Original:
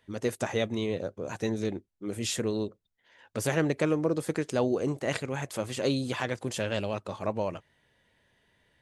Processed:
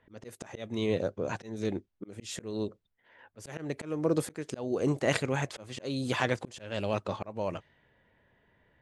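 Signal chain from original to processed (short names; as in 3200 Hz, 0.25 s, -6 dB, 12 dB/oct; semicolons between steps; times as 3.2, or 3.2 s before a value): low-pass opened by the level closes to 1800 Hz, open at -26 dBFS; auto swell 0.373 s; gain +3 dB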